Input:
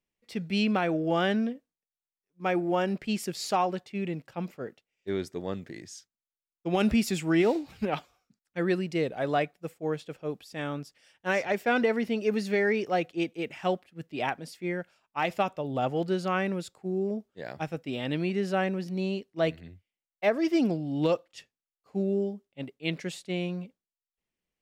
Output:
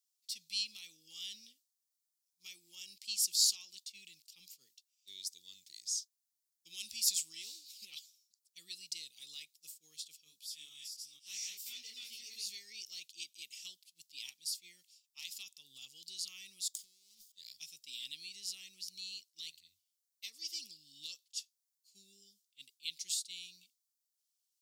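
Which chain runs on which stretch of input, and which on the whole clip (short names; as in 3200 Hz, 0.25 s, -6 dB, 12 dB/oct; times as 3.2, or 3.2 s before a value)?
10.24–12.5 reverse delay 0.233 s, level 0 dB + detuned doubles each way 31 cents
16.74–17.32 minimum comb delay 0.58 ms + high shelf 2400 Hz +8 dB + negative-ratio compressor -44 dBFS
whole clip: compressor 2:1, threshold -28 dBFS; inverse Chebyshev high-pass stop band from 1700 Hz, stop band 50 dB; gain +10 dB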